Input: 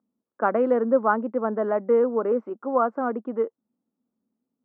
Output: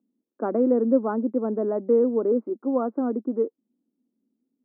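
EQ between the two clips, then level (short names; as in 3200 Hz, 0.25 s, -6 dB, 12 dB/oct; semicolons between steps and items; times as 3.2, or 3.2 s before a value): band-pass 300 Hz, Q 2.4; +7.5 dB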